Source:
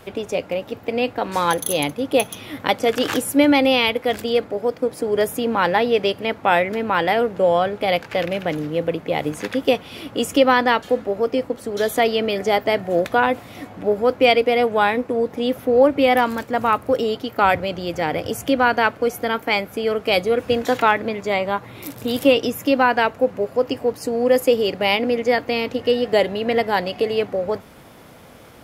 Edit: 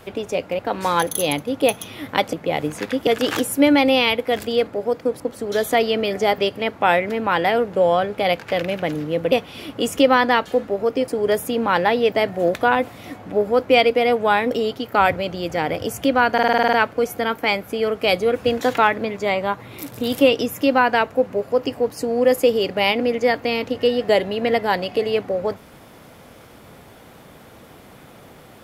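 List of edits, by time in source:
0.59–1.10 s: delete
4.97–6.01 s: swap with 11.45–12.63 s
8.95–9.69 s: move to 2.84 s
15.02–16.95 s: delete
18.77 s: stutter 0.05 s, 9 plays

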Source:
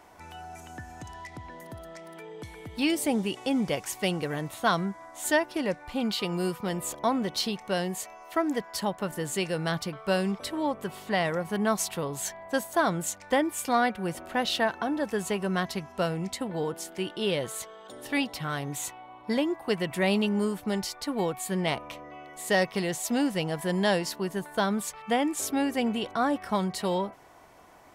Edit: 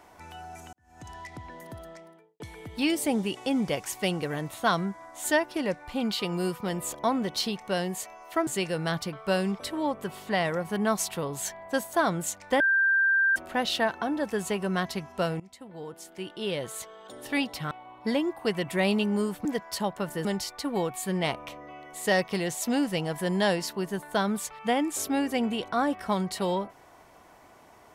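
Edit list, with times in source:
0.73–1.09 s: fade in quadratic
1.80–2.40 s: studio fade out
8.47–9.27 s: move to 20.68 s
13.40–14.16 s: bleep 1.58 kHz -19.5 dBFS
16.20–17.88 s: fade in, from -20 dB
18.51–18.94 s: delete

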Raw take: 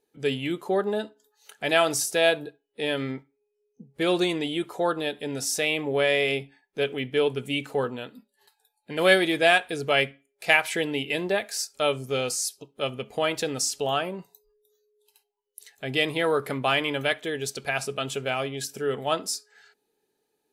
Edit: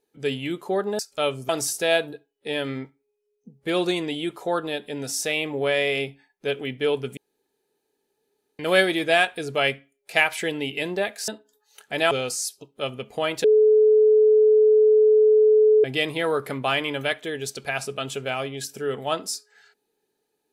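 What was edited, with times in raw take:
0.99–1.82 s: swap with 11.61–12.11 s
7.50–8.92 s: room tone
13.44–15.84 s: bleep 430 Hz -12.5 dBFS

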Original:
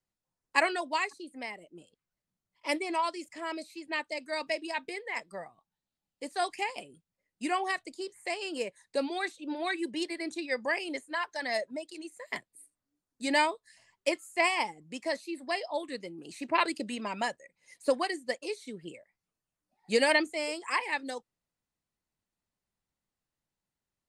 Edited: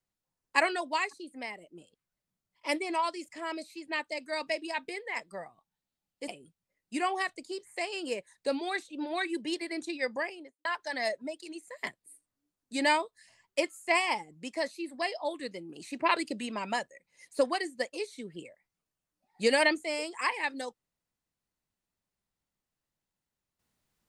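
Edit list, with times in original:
6.28–6.77 s: delete
10.53–11.14 s: studio fade out

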